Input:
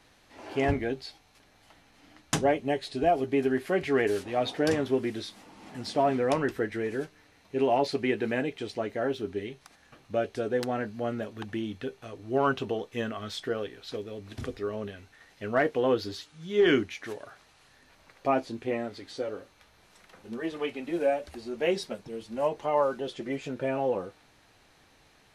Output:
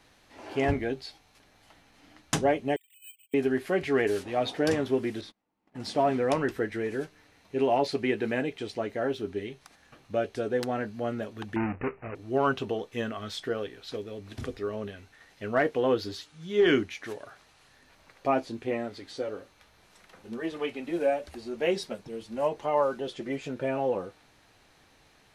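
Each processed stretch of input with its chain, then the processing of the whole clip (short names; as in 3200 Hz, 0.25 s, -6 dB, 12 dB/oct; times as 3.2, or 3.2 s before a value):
2.76–3.34 sine-wave speech + steep high-pass 2500 Hz 48 dB/oct + careless resampling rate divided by 8×, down none, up zero stuff
5.21–5.8 gate -45 dBFS, range -29 dB + high shelf 3300 Hz -11.5 dB
11.56–12.15 half-waves squared off + LPF 3100 Hz 24 dB/oct + careless resampling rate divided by 8×, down none, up filtered
whole clip: dry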